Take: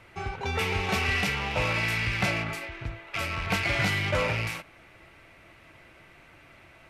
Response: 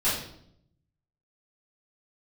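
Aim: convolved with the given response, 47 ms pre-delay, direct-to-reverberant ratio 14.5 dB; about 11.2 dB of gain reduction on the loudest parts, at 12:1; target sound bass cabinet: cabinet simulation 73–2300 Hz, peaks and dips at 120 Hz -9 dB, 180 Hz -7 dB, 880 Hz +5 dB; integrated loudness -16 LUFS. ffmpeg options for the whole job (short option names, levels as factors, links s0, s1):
-filter_complex "[0:a]acompressor=threshold=0.0224:ratio=12,asplit=2[s0][s1];[1:a]atrim=start_sample=2205,adelay=47[s2];[s1][s2]afir=irnorm=-1:irlink=0,volume=0.0501[s3];[s0][s3]amix=inputs=2:normalize=0,highpass=f=73:w=0.5412,highpass=f=73:w=1.3066,equalizer=f=120:t=q:w=4:g=-9,equalizer=f=180:t=q:w=4:g=-7,equalizer=f=880:t=q:w=4:g=5,lowpass=f=2300:w=0.5412,lowpass=f=2300:w=1.3066,volume=13.3"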